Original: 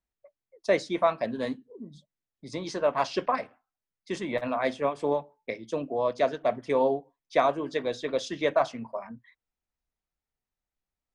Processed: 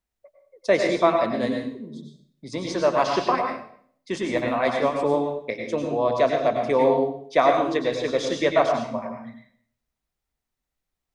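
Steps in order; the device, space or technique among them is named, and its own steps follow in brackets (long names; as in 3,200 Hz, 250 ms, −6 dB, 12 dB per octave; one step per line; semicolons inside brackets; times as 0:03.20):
bathroom (convolution reverb RT60 0.60 s, pre-delay 89 ms, DRR 3 dB)
level +4 dB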